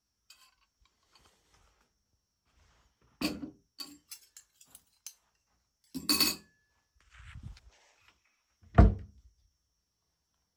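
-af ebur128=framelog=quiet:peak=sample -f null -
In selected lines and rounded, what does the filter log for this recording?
Integrated loudness:
  I:         -29.4 LUFS
  Threshold: -45.1 LUFS
Loudness range:
  LRA:        11.6 LU
  Threshold: -56.5 LUFS
  LRA low:   -45.0 LUFS
  LRA high:  -33.4 LUFS
Sample peak:
  Peak:       -6.9 dBFS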